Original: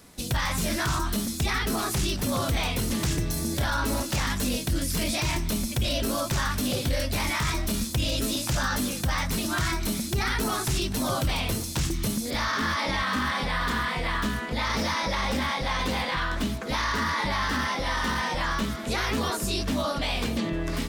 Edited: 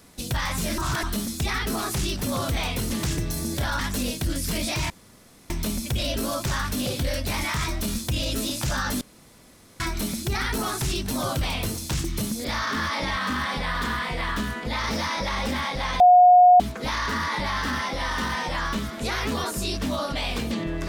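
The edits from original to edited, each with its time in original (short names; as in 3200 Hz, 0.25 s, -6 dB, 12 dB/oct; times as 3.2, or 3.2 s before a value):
0.78–1.03 reverse
3.79–4.25 cut
5.36 insert room tone 0.60 s
8.87–9.66 room tone
15.86–16.46 bleep 721 Hz -9.5 dBFS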